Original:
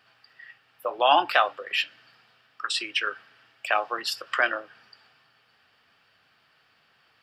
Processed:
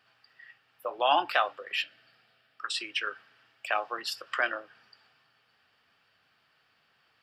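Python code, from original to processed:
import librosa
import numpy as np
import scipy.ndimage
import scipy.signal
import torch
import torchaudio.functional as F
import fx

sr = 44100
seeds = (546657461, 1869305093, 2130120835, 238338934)

y = fx.graphic_eq_31(x, sr, hz=(630, 1000, 6300), db=(4, -9, -7), at=(1.82, 2.62))
y = F.gain(torch.from_numpy(y), -5.0).numpy()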